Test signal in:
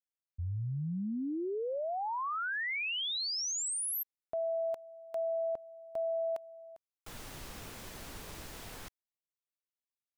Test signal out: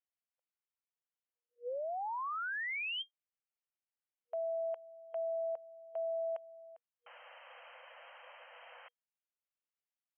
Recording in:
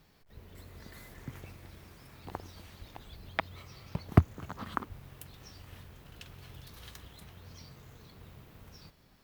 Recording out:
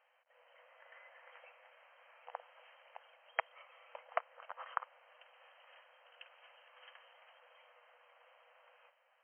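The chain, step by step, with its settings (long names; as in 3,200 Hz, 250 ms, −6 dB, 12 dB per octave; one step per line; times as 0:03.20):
brick-wall band-pass 480–3,200 Hz
level −3 dB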